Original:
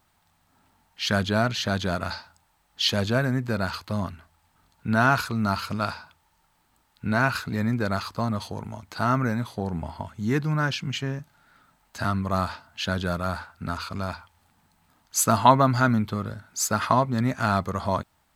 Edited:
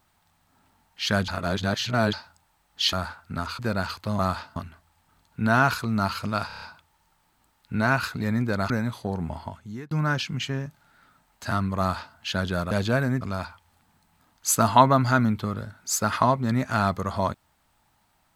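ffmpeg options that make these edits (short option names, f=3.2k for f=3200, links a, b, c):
-filter_complex "[0:a]asplit=16[a][b][c][d][e][f][g][h][i][j][k][l][m][n][o][p];[a]atrim=end=1.282[q];[b]atrim=start=1.278:end=2.132,asetpts=PTS-STARTPTS,areverse[r];[c]atrim=start=2.128:end=2.932[s];[d]atrim=start=13.238:end=13.902[t];[e]atrim=start=3.428:end=4.032[u];[f]atrim=start=12.318:end=12.692[v];[g]atrim=start=4.028:end=5.972[w];[h]atrim=start=5.938:end=5.972[x];[i]atrim=start=5.938:end=5.972[y];[j]atrim=start=5.938:end=5.972[z];[k]atrim=start=5.938:end=5.972[aa];[l]atrim=start=5.938:end=8.022[ab];[m]atrim=start=9.228:end=10.44,asetpts=PTS-STARTPTS,afade=t=out:st=0.692:d=0.52[ac];[n]atrim=start=10.44:end=13.242,asetpts=PTS-STARTPTS,afade=t=in:d=0.004:c=hsin[ad];[o]atrim=start=2.928:end=3.432[ae];[p]atrim=start=13.898[af];[q][r]acrossfade=d=0.004:c1=hsin:c2=hsin[ag];[ag][s]acrossfade=d=0.004:c1=hsin:c2=hsin[ah];[ah][t]acrossfade=d=0.004:c1=hsin:c2=hsin[ai];[ai][u]acrossfade=d=0.004:c1=hsin:c2=hsin[aj];[aj][v]acrossfade=d=0.004:c1=hsin:c2=hsin[ak];[ak][w]acrossfade=d=0.004:c1=hsin:c2=hsin[al];[al][x]acrossfade=d=0.004:c1=hsin:c2=hsin[am];[am][y]acrossfade=d=0.004:c1=hsin:c2=hsin[an];[an][z]acrossfade=d=0.004:c1=hsin:c2=hsin[ao];[ao][aa]acrossfade=d=0.004:c1=hsin:c2=hsin[ap];[ap][ab]acrossfade=d=0.004:c1=hsin:c2=hsin[aq];[ac][ad]concat=n=2:v=0:a=1[ar];[aq][ar]acrossfade=d=0.004:c1=hsin:c2=hsin[as];[as][ae]acrossfade=d=0.004:c1=hsin:c2=hsin[at];[at][af]acrossfade=d=0.004:c1=hsin:c2=hsin"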